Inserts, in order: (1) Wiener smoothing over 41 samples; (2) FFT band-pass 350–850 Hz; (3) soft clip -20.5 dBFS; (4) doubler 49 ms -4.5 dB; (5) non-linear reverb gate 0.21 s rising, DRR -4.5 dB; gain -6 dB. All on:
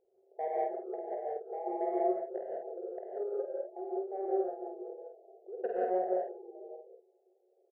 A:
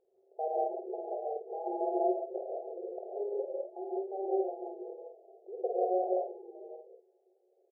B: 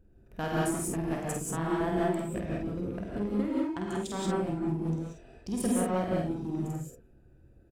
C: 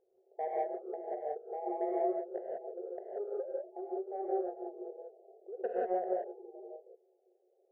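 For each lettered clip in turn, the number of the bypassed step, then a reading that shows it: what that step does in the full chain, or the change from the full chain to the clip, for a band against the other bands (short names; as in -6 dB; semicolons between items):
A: 3, distortion -22 dB; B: 2, momentary loudness spread change -8 LU; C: 4, loudness change -2.0 LU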